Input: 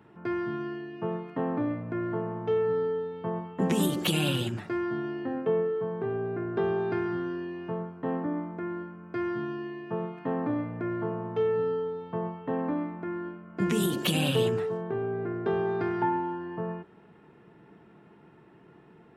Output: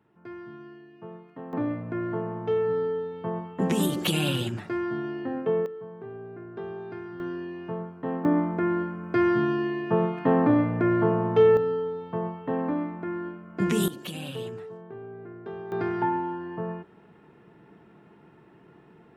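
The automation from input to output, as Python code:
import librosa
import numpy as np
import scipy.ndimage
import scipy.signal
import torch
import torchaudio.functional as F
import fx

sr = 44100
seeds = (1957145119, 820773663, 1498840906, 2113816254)

y = fx.gain(x, sr, db=fx.steps((0.0, -10.5), (1.53, 1.0), (5.66, -9.0), (7.2, 0.0), (8.25, 9.0), (11.57, 2.0), (13.88, -10.0), (15.72, 1.0)))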